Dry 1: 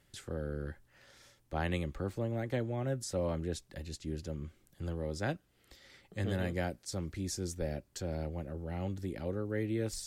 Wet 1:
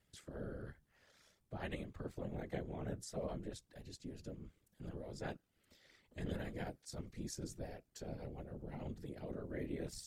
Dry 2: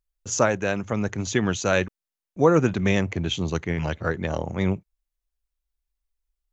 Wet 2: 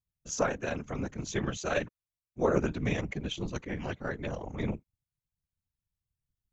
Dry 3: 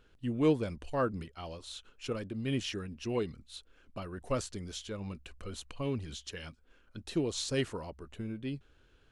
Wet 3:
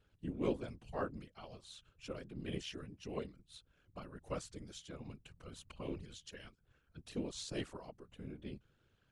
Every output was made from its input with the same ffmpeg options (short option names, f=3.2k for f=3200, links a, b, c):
-af "aeval=exprs='val(0)*sin(2*PI*37*n/s)':c=same,afftfilt=real='hypot(re,im)*cos(2*PI*random(0))':imag='hypot(re,im)*sin(2*PI*random(1))':win_size=512:overlap=0.75,aeval=exprs='0.251*(cos(1*acos(clip(val(0)/0.251,-1,1)))-cos(1*PI/2))+0.00501*(cos(4*acos(clip(val(0)/0.251,-1,1)))-cos(4*PI/2))':c=same"